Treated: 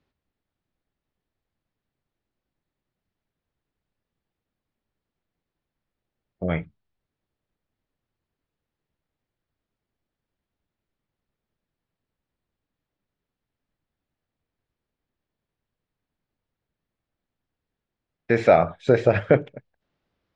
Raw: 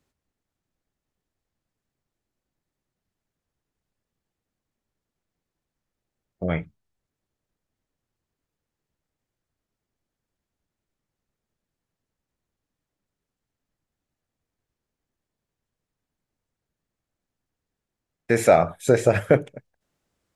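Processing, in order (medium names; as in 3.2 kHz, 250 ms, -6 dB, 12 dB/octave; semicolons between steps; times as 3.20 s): low-pass 4.4 kHz 24 dB/octave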